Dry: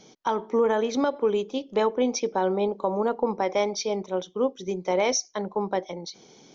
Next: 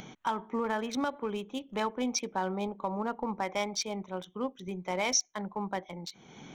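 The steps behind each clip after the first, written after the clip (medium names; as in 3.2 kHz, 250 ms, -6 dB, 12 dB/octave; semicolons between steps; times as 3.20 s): local Wiener filter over 9 samples; peaking EQ 450 Hz -13 dB 1.5 oct; upward compressor, threshold -36 dBFS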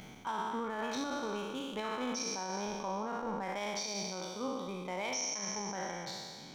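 spectral sustain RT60 1.90 s; peak limiter -20.5 dBFS, peak gain reduction 9 dB; trim -6.5 dB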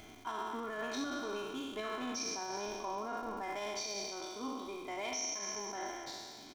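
comb 2.9 ms, depth 99%; crackle 210 per s -44 dBFS; frequency-shifting echo 228 ms, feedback 50%, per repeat -65 Hz, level -21.5 dB; trim -4.5 dB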